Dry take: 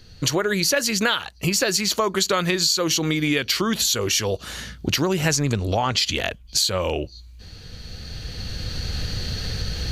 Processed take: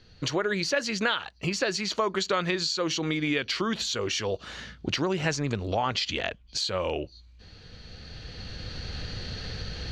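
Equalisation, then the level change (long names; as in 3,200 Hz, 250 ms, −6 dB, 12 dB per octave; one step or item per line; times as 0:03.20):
high-frequency loss of the air 130 metres
low-shelf EQ 190 Hz −6.5 dB
−3.5 dB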